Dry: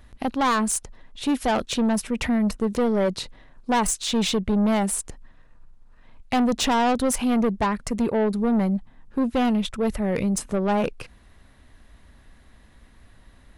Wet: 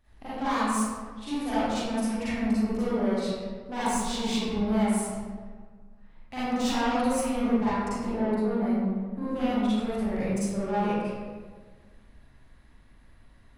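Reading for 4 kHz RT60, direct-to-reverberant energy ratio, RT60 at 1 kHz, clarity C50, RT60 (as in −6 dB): 0.90 s, −13.0 dB, 1.5 s, −6.5 dB, 1.6 s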